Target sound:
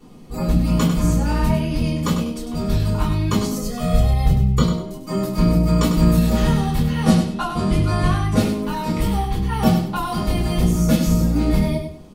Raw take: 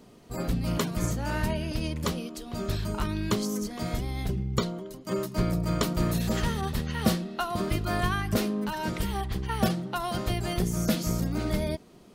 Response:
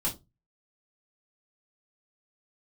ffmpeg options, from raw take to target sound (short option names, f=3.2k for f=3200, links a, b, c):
-filter_complex "[0:a]asettb=1/sr,asplit=3[a][b][c];[a]atrim=end=3.514[d];[b]atrim=start=3.51:end=4.58,asetpts=PTS-STARTPTS,afade=t=in:d=0.004:c=qsin,afade=t=out:st=1.066:d=0.004:c=qsin,aecho=1:1:1.6:0.87,atrim=end_sample=47187[e];[c]atrim=start=4.576[f];[d][e]acrossfade=d=0.004:c1=hsin:c2=qsin[g];[g][f]acrossfade=d=0.004:c1=qsin:c2=hsin,asettb=1/sr,asplit=3[h][i][j];[h]atrim=end=7.034[k];[i]atrim=start=7.03:end=8.4,asetpts=PTS-STARTPTS,afade=t=in:d=0.004:c=qsin,afade=t=out:st=1.366:d=0.004:c=qsin,lowpass=f=11k:w=0.5412,lowpass=f=11k:w=1.3066[l];[j]atrim=start=8.396[m];[k][l]acrossfade=d=0.004:c1=hsin:c2=qsin[n];[n][m]acrossfade=d=0.004:c1=qsin:c2=hsin,aecho=1:1:99|198|297:0.398|0.104|0.0269[o];[1:a]atrim=start_sample=2205,asetrate=40572,aresample=44100[p];[o][p]afir=irnorm=-1:irlink=0,volume=-1dB"